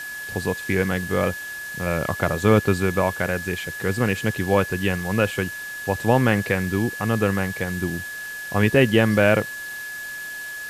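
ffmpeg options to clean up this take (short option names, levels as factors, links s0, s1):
-af "bandreject=f=1700:w=30,afwtdn=0.01"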